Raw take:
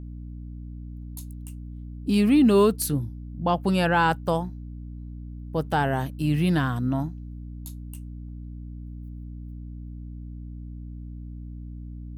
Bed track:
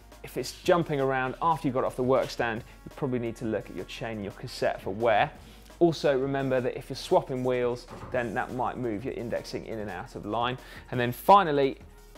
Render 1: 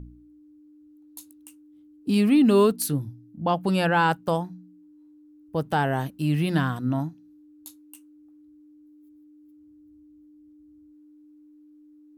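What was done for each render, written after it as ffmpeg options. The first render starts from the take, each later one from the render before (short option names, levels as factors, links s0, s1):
-af "bandreject=f=60:t=h:w=4,bandreject=f=120:t=h:w=4,bandreject=f=180:t=h:w=4,bandreject=f=240:t=h:w=4"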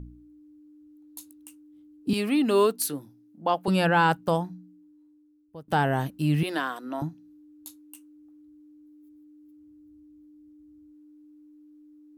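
-filter_complex "[0:a]asettb=1/sr,asplit=3[s0][s1][s2];[s0]atrim=end=2.134[s3];[s1]atrim=start=2.13:end=3.68,asetpts=PTS-STARTPTS,afade=t=in:d=0.004:c=qsin,afade=t=out:st=1.546:d=0.004:c=qsin,highpass=360[s4];[s2]atrim=start=3.676[s5];[s3][s4]acrossfade=d=0.004:c1=hsin:c2=qsin[s6];[s6][s5]acrossfade=d=0.004:c1=qsin:c2=hsin,asettb=1/sr,asplit=3[s7][s8][s9];[s7]atrim=end=6.434[s10];[s8]atrim=start=6.43:end=7.02,asetpts=PTS-STARTPTS,afade=t=in:d=0.004:c=qsin,afade=t=out:st=0.586:d=0.004:c=qsin,highpass=f=340:w=0.5412,highpass=f=340:w=1.3066[s11];[s9]atrim=start=7.016[s12];[s10][s11]acrossfade=d=0.004:c1=hsin:c2=qsin[s13];[s13][s12]acrossfade=d=0.004:c1=qsin:c2=hsin,asplit=2[s14][s15];[s14]atrim=end=5.68,asetpts=PTS-STARTPTS,afade=t=out:st=4.5:d=1.18:silence=0.0749894[s16];[s15]atrim=start=5.68,asetpts=PTS-STARTPTS,afade=t=in:d=0.004:c=hsin:silence=0.0749894[s17];[s16][s17]concat=n=2:v=0:a=1"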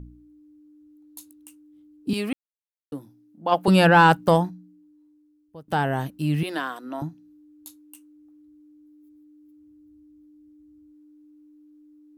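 -filter_complex "[0:a]asplit=3[s0][s1][s2];[s0]afade=t=out:st=3.51:d=0.02[s3];[s1]acontrast=82,afade=t=in:st=3.51:d=0.02,afade=t=out:st=4.49:d=0.02[s4];[s2]afade=t=in:st=4.49:d=0.02[s5];[s3][s4][s5]amix=inputs=3:normalize=0,asplit=3[s6][s7][s8];[s6]atrim=end=2.33,asetpts=PTS-STARTPTS,afade=t=out:st=2.326:d=0.004:c=hsin[s9];[s7]atrim=start=2.33:end=2.92,asetpts=PTS-STARTPTS,volume=0[s10];[s8]atrim=start=2.92,asetpts=PTS-STARTPTS,afade=t=in:d=0.004:c=hsin[s11];[s9][s10][s11]concat=n=3:v=0:a=1"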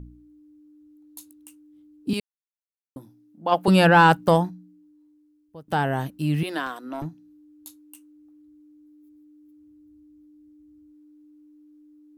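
-filter_complex "[0:a]asettb=1/sr,asplit=3[s0][s1][s2];[s0]atrim=end=6.664[s3];[s1]atrim=start=6.66:end=7.06,asetpts=PTS-STARTPTS,afade=t=in:d=0.004:c=qsin,afade=t=out:st=0.396:d=0.004:c=qsin,aeval=exprs='clip(val(0),-1,0.0398)':c=same[s4];[s2]atrim=start=7.056[s5];[s3][s4]acrossfade=d=0.004:c1=hsin:c2=qsin[s6];[s6][s5]acrossfade=d=0.004:c1=qsin:c2=hsin,asplit=3[s7][s8][s9];[s7]atrim=end=2.2,asetpts=PTS-STARTPTS,afade=t=out:st=2.196:d=0.004:c=hsin[s10];[s8]atrim=start=2.2:end=2.96,asetpts=PTS-STARTPTS,volume=0[s11];[s9]atrim=start=2.96,asetpts=PTS-STARTPTS,afade=t=in:d=0.004:c=hsin[s12];[s10][s11][s12]concat=n=3:v=0:a=1"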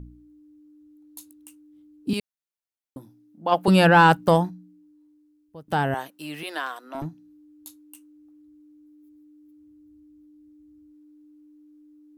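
-filter_complex "[0:a]asettb=1/sr,asplit=3[s0][s1][s2];[s0]atrim=end=5.944[s3];[s1]atrim=start=5.94:end=6.95,asetpts=PTS-STARTPTS,afade=t=in:d=0.004:c=qsin,afade=t=out:st=1.006:d=0.004:c=qsin,highpass=510[s4];[s2]atrim=start=6.946[s5];[s3][s4]acrossfade=d=0.004:c1=hsin:c2=qsin[s6];[s6][s5]acrossfade=d=0.004:c1=qsin:c2=hsin"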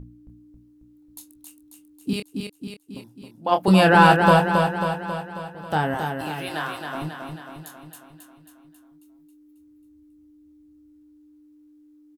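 -filter_complex "[0:a]asplit=2[s0][s1];[s1]adelay=26,volume=0.422[s2];[s0][s2]amix=inputs=2:normalize=0,aecho=1:1:271|542|813|1084|1355|1626|1897|2168:0.562|0.326|0.189|0.11|0.0636|0.0369|0.0214|0.0124"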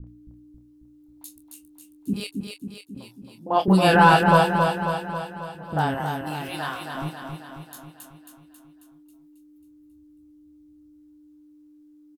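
-filter_complex "[0:a]asplit=2[s0][s1];[s1]adelay=14,volume=0.2[s2];[s0][s2]amix=inputs=2:normalize=0,acrossover=split=410|1900[s3][s4][s5];[s4]adelay=40[s6];[s5]adelay=70[s7];[s3][s6][s7]amix=inputs=3:normalize=0"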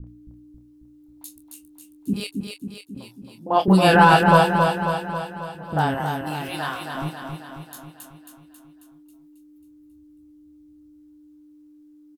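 -af "volume=1.26,alimiter=limit=0.794:level=0:latency=1"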